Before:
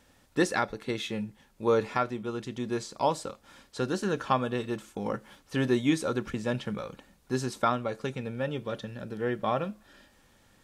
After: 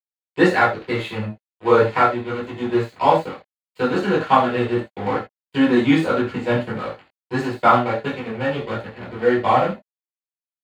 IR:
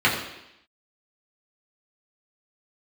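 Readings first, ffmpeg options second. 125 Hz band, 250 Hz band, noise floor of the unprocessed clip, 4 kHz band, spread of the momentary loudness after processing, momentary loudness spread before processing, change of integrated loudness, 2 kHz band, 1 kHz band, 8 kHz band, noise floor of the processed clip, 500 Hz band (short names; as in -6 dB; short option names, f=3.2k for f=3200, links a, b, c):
+8.0 dB, +10.0 dB, -63 dBFS, +7.0 dB, 13 LU, 11 LU, +11.0 dB, +12.0 dB, +13.0 dB, n/a, under -85 dBFS, +10.5 dB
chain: -filter_complex "[0:a]equalizer=f=750:t=o:w=1.8:g=5.5,flanger=delay=18.5:depth=7.1:speed=1.6,aeval=exprs='sgn(val(0))*max(abs(val(0))-0.00891,0)':c=same[a];[1:a]atrim=start_sample=2205,atrim=end_sample=3969[b];[a][b]afir=irnorm=-1:irlink=0,volume=-5dB"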